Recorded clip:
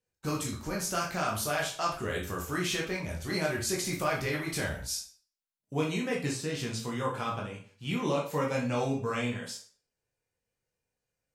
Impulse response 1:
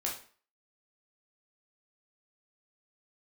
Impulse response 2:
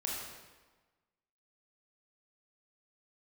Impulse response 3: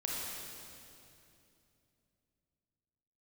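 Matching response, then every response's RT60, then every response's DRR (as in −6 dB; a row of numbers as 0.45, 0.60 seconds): 1; 0.45, 1.3, 2.7 seconds; −3.0, −3.5, −4.0 decibels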